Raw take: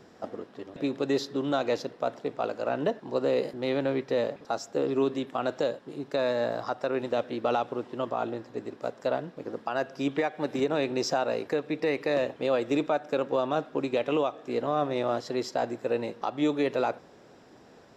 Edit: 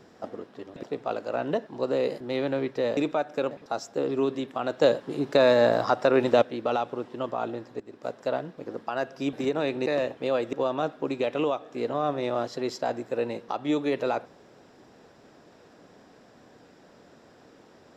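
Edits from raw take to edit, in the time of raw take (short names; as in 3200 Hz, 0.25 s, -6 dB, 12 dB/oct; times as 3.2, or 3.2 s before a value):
0.83–2.16 cut
5.61–7.21 gain +8 dB
8.59–8.89 fade in, from -15 dB
10.12–10.48 cut
11.01–12.05 cut
12.72–13.26 move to 4.3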